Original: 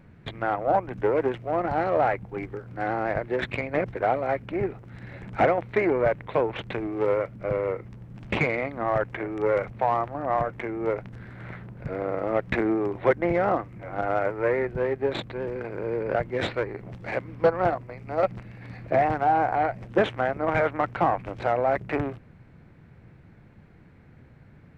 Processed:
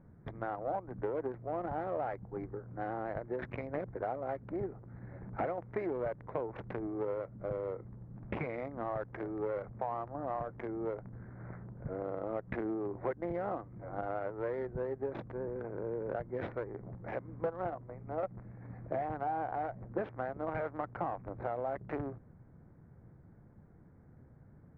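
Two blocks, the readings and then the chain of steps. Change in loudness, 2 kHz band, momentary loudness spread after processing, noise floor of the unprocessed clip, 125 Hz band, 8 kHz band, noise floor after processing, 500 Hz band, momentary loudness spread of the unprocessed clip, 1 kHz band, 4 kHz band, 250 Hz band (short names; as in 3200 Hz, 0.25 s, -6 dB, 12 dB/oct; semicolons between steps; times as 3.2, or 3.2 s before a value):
-12.5 dB, -16.5 dB, 9 LU, -52 dBFS, -9.5 dB, n/a, -58 dBFS, -12.0 dB, 12 LU, -13.0 dB, under -20 dB, -10.5 dB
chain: Wiener smoothing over 15 samples; compressor 3:1, threshold -28 dBFS, peak gain reduction 10 dB; LPF 1700 Hz 12 dB/oct; gain -6 dB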